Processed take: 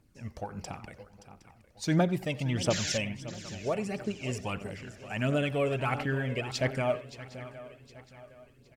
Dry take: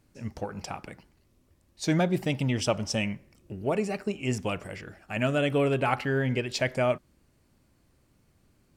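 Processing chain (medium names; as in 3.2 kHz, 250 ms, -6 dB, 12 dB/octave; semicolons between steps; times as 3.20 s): speakerphone echo 90 ms, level -15 dB; painted sound noise, 2.70–2.98 s, 1.4–7.5 kHz -31 dBFS; on a send: shuffle delay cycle 764 ms, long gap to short 3:1, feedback 37%, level -14.5 dB; on the sum: phaser 1.5 Hz, delay 2 ms, feedback 45%; trim -4.5 dB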